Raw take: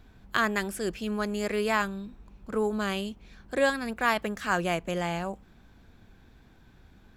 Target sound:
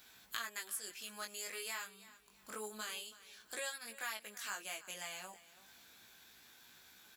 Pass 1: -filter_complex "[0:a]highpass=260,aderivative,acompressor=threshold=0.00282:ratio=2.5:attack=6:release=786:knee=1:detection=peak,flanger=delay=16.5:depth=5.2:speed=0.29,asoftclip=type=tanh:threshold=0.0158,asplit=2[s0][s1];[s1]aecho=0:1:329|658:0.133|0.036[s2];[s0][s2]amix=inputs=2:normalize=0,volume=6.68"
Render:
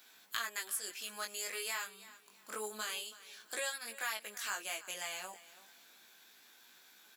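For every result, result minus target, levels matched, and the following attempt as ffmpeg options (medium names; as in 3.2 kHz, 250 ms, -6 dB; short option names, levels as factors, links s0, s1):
compression: peak gain reduction -4.5 dB; 250 Hz band -4.0 dB
-filter_complex "[0:a]highpass=260,aderivative,acompressor=threshold=0.00126:ratio=2.5:attack=6:release=786:knee=1:detection=peak,flanger=delay=16.5:depth=5.2:speed=0.29,asoftclip=type=tanh:threshold=0.0158,asplit=2[s0][s1];[s1]aecho=0:1:329|658:0.133|0.036[s2];[s0][s2]amix=inputs=2:normalize=0,volume=6.68"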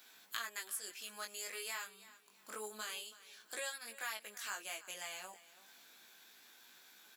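250 Hz band -4.0 dB
-filter_complex "[0:a]aderivative,acompressor=threshold=0.00126:ratio=2.5:attack=6:release=786:knee=1:detection=peak,flanger=delay=16.5:depth=5.2:speed=0.29,asoftclip=type=tanh:threshold=0.0158,asplit=2[s0][s1];[s1]aecho=0:1:329|658:0.133|0.036[s2];[s0][s2]amix=inputs=2:normalize=0,volume=6.68"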